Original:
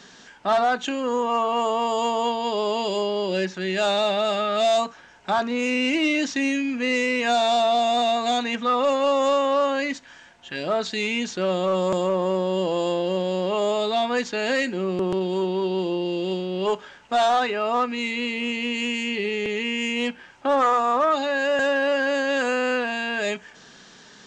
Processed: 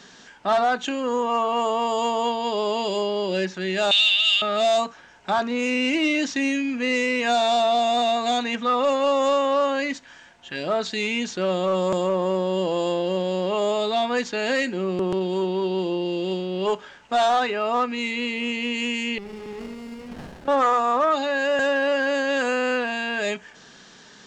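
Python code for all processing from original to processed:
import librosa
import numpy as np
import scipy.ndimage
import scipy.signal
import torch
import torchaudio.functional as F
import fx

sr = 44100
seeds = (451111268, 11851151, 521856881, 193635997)

y = fx.chain(x, sr, fx.highpass_res(hz=3000.0, q=11.0),
    fx.high_shelf(hz=5600.0, db=5.5), at=(3.91, 4.42))
y = fx.chain(y, sr, fx.over_compress(threshold_db=-37.0, ratio=-1.0),
    fx.room_flutter(wall_m=11.9, rt60_s=0.82),
    fx.running_max(window=33), at=(19.18, 20.48))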